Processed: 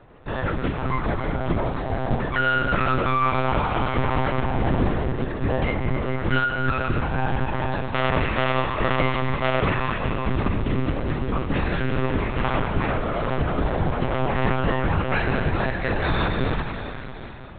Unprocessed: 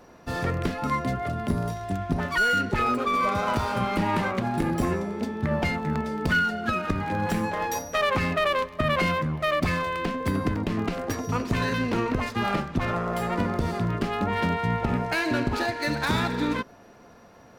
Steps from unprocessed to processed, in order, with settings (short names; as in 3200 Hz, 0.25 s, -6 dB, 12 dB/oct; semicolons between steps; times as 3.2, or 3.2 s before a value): in parallel at -8.5 dB: decimation with a swept rate 35×, swing 100% 2.3 Hz; on the sum: Schroeder reverb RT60 3.9 s, combs from 28 ms, DRR 1.5 dB; monotone LPC vocoder at 8 kHz 130 Hz